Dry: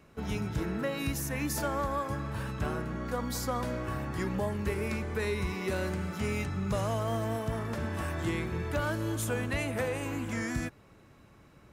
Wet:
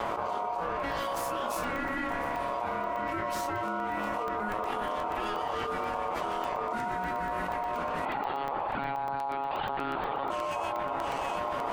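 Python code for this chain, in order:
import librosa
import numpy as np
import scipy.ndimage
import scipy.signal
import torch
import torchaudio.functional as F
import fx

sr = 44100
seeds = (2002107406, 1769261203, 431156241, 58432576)

y = fx.lower_of_two(x, sr, delay_ms=8.1)
y = fx.doubler(y, sr, ms=26.0, db=-5)
y = fx.lpc_monotone(y, sr, seeds[0], pitch_hz=140.0, order=16, at=(8.05, 10.3))
y = fx.high_shelf(y, sr, hz=2200.0, db=-10.5)
y = fx.echo_alternate(y, sr, ms=350, hz=1300.0, feedback_pct=56, wet_db=-14)
y = fx.rotary_switch(y, sr, hz=0.85, then_hz=6.7, switch_at_s=3.73)
y = y * np.sin(2.0 * np.pi * 830.0 * np.arange(len(y)) / sr)
y = fx.buffer_crackle(y, sr, first_s=0.8, period_s=0.12, block=64, kind='zero')
y = fx.env_flatten(y, sr, amount_pct=100)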